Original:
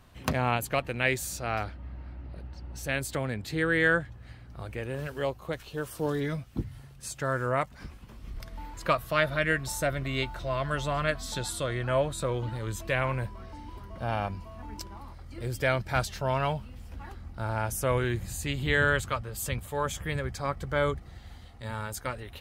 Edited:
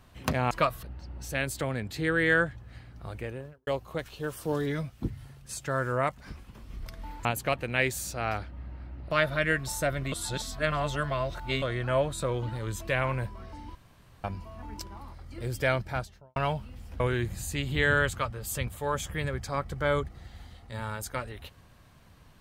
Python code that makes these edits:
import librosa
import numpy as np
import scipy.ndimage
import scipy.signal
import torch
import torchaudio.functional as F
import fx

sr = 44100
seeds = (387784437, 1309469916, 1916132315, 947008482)

y = fx.studio_fade_out(x, sr, start_s=4.7, length_s=0.51)
y = fx.studio_fade_out(y, sr, start_s=15.7, length_s=0.66)
y = fx.edit(y, sr, fx.swap(start_s=0.51, length_s=1.86, other_s=8.79, other_length_s=0.32),
    fx.reverse_span(start_s=10.12, length_s=1.5),
    fx.room_tone_fill(start_s=13.75, length_s=0.49),
    fx.cut(start_s=17.0, length_s=0.91), tone=tone)